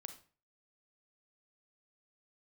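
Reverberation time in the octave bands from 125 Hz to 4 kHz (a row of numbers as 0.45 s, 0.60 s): 0.50 s, 0.40 s, 0.40 s, 0.40 s, 0.35 s, 0.30 s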